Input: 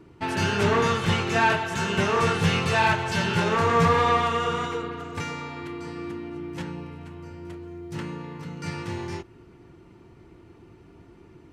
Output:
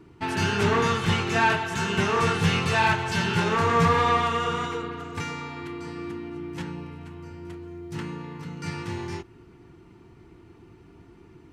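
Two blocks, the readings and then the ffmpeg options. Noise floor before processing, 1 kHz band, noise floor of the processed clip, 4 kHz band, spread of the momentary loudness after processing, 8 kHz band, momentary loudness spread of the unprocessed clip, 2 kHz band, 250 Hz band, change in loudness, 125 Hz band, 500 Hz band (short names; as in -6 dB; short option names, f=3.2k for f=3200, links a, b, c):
-52 dBFS, -0.5 dB, -52 dBFS, 0.0 dB, 17 LU, 0.0 dB, 17 LU, 0.0 dB, 0.0 dB, -0.5 dB, 0.0 dB, -1.5 dB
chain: -af "equalizer=f=570:t=o:w=0.3:g=-8.5"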